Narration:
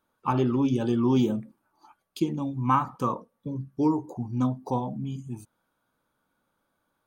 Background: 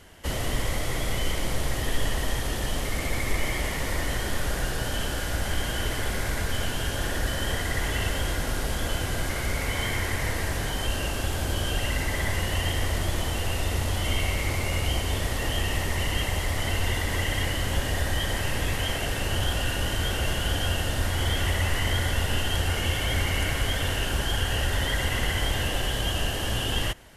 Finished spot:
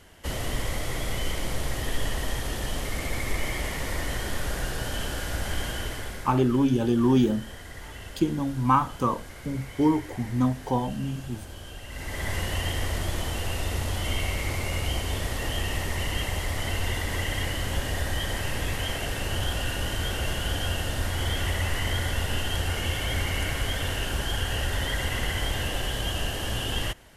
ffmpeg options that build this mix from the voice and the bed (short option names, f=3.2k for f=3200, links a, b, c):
-filter_complex "[0:a]adelay=6000,volume=2dB[a];[1:a]volume=10dB,afade=t=out:st=5.64:d=0.74:silence=0.251189,afade=t=in:st=11.88:d=0.47:silence=0.251189[b];[a][b]amix=inputs=2:normalize=0"